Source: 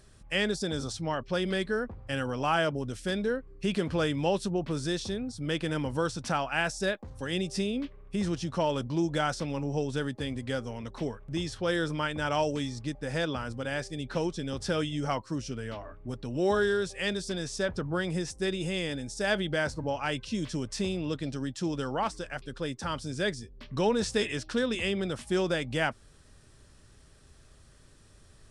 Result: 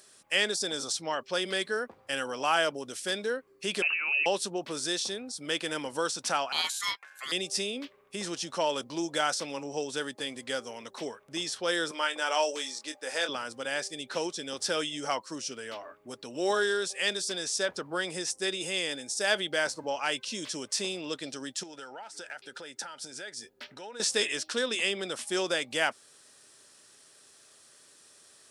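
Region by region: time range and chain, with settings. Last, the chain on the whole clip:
3.82–4.26 s: compressor with a negative ratio -32 dBFS + frequency inversion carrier 2.8 kHz
6.52–7.32 s: bass shelf 370 Hz -9.5 dB + ring modulator 1.6 kHz
11.91–13.29 s: high-pass 390 Hz + doubling 23 ms -8.5 dB
21.63–24.00 s: peaking EQ 1.2 kHz +9.5 dB 1.5 oct + compression 16:1, threshold -37 dBFS + Butterworth band-stop 1.1 kHz, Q 3.8
whole clip: high-pass 380 Hz 12 dB/octave; treble shelf 3.5 kHz +10.5 dB

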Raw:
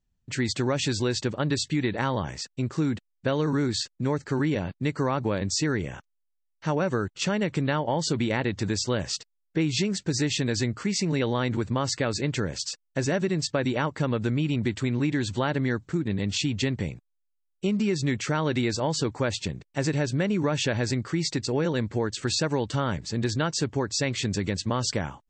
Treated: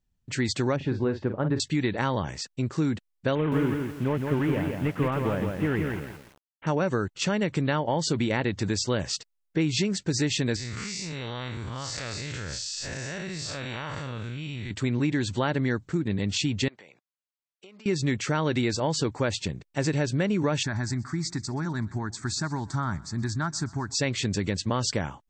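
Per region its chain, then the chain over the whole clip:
0.76–1.60 s: low-pass 1.3 kHz + doubling 45 ms -9 dB
3.35–6.67 s: CVSD coder 16 kbps + bit-crushed delay 167 ms, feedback 35%, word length 8-bit, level -4 dB
10.56–14.71 s: spectral blur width 145 ms + peaking EQ 290 Hz -14 dB 2.8 oct + level flattener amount 100%
16.68–17.86 s: high-pass 620 Hz + compression 4:1, threshold -47 dBFS + distance through air 88 m
20.63–23.95 s: static phaser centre 1.2 kHz, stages 4 + feedback delay 126 ms, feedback 54%, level -22.5 dB
whole clip: none

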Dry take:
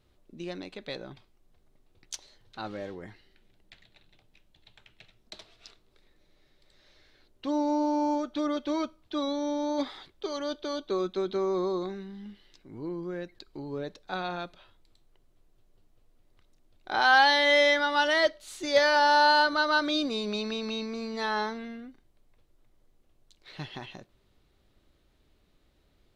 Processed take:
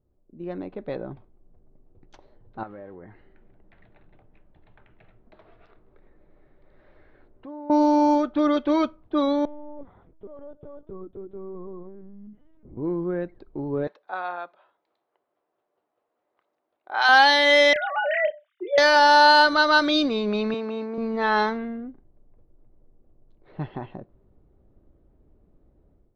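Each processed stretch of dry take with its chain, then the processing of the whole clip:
2.63–7.70 s: compression 3:1, threshold -53 dBFS + peaking EQ 1.8 kHz +12 dB 2.2 oct
9.45–12.77 s: compression 2:1, threshold -56 dBFS + distance through air 240 m + LPC vocoder at 8 kHz pitch kept
13.87–17.09 s: high-pass 820 Hz + tape noise reduction on one side only encoder only
17.73–18.78 s: formants replaced by sine waves + doubling 30 ms -7 dB + compression 4:1, threshold -26 dBFS
20.54–20.98 s: companding laws mixed up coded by A + high-pass 250 Hz
whole clip: level-controlled noise filter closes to 600 Hz, open at -19.5 dBFS; level rider gain up to 12 dB; trim -3.5 dB

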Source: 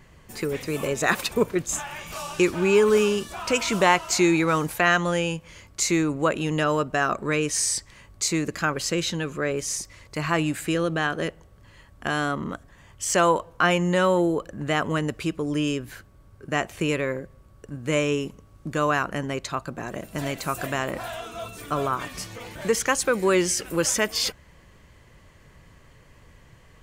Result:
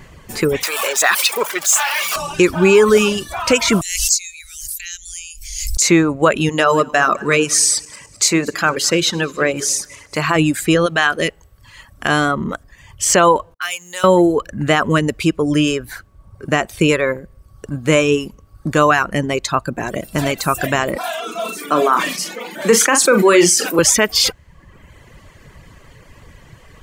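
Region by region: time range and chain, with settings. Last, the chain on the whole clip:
0.63–2.16 s: jump at every zero crossing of -25 dBFS + high-pass 860 Hz
3.81–5.82 s: inverse Chebyshev band-stop 210–1100 Hz, stop band 80 dB + high-order bell 1.2 kHz +14.5 dB 2.4 oct + swell ahead of each attack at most 47 dB/s
6.49–10.36 s: backward echo that repeats 105 ms, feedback 60%, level -13 dB + high-pass 220 Hz 6 dB/octave + hum notches 60/120/180/240/300/360/420 Hz
10.86–12.09 s: tilt shelf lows -4 dB, about 930 Hz + de-hum 413.4 Hz, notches 2
13.54–14.04 s: companding laws mixed up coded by A + level-controlled noise filter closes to 410 Hz, open at -21 dBFS + differentiator
20.96–23.79 s: steep high-pass 180 Hz 48 dB/octave + flutter echo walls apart 7 m, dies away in 0.29 s + decay stretcher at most 51 dB/s
whole clip: reverb removal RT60 0.88 s; loudness maximiser +12.5 dB; trim -1 dB

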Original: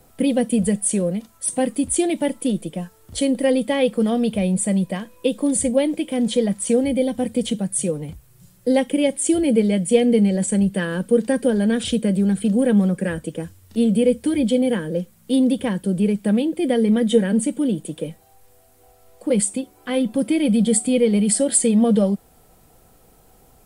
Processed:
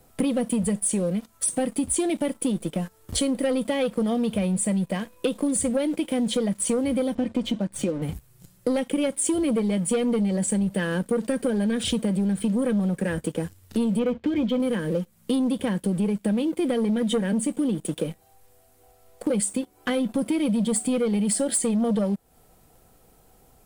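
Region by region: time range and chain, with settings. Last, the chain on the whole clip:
7.15–8.02 s: distance through air 130 m + comb 3.3 ms, depth 46%
13.99–14.60 s: low-pass 3.5 kHz 24 dB/octave + doubling 17 ms -13.5 dB
whole clip: waveshaping leveller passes 2; compression 4:1, threshold -24 dBFS

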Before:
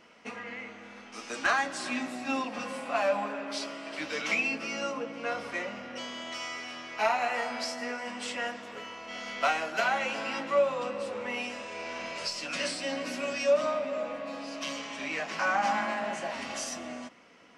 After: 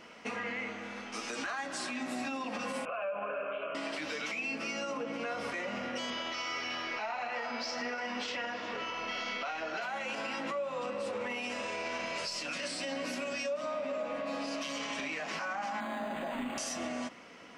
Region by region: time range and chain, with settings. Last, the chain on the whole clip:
2.85–3.75 s: steep low-pass 2.8 kHz 72 dB/octave + static phaser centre 1.3 kHz, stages 8 + compression 3:1, threshold -34 dBFS
6.10–9.82 s: steep low-pass 6 kHz + doubling 22 ms -8 dB + phaser 1.7 Hz, delay 4.6 ms, feedback 25%
15.80–16.58 s: peaking EQ 250 Hz +13.5 dB 0.22 oct + decimation joined by straight lines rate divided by 8×
whole clip: compression 12:1, threshold -35 dBFS; peak limiter -33 dBFS; trim +5 dB

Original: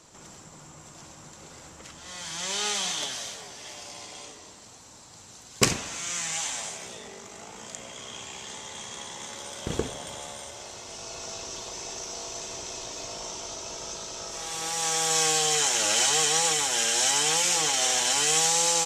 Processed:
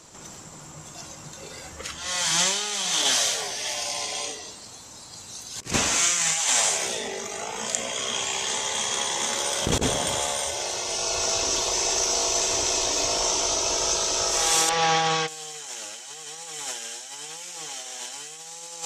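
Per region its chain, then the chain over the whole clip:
14.69–15.28 s: distance through air 230 m + doubling 32 ms -8.5 dB
whole clip: spectral noise reduction 8 dB; treble shelf 6.1 kHz +3 dB; compressor with a negative ratio -32 dBFS, ratio -0.5; trim +7 dB

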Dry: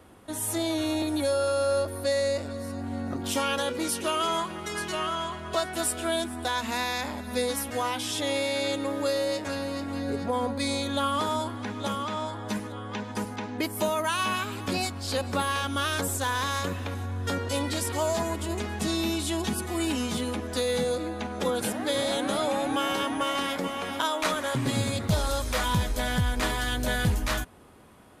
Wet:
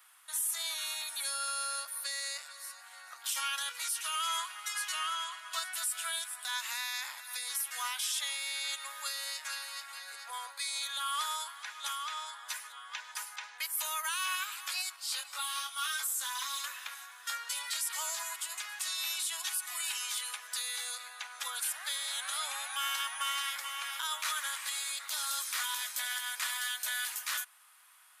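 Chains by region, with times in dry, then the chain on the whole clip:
14.96–16.64 s: band-stop 1.7 kHz, Q 9.7 + comb 7 ms, depth 44% + detune thickener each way 10 cents
whole clip: inverse Chebyshev high-pass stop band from 200 Hz, stop band 80 dB; treble shelf 7.3 kHz +11 dB; peak limiter -21 dBFS; trim -2.5 dB

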